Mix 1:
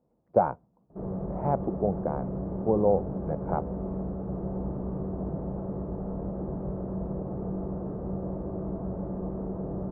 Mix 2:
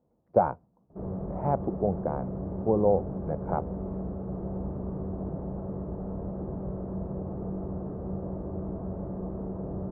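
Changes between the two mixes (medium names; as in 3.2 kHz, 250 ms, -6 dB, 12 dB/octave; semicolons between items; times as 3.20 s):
background: send -7.0 dB; master: add peaking EQ 86 Hz +8.5 dB 0.23 oct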